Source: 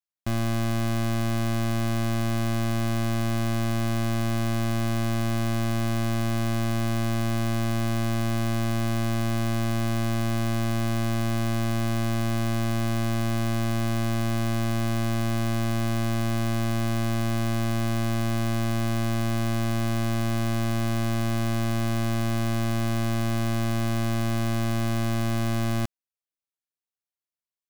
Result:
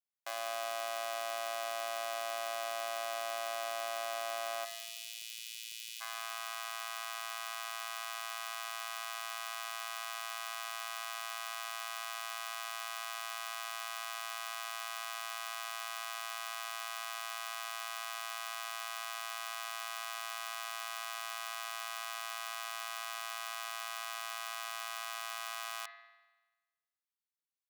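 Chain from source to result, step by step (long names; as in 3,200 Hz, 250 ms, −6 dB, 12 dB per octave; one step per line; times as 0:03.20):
Butterworth high-pass 560 Hz 36 dB per octave, from 0:04.64 2,500 Hz, from 0:06.00 880 Hz
convolution reverb RT60 1.2 s, pre-delay 48 ms, DRR 8 dB
level −4.5 dB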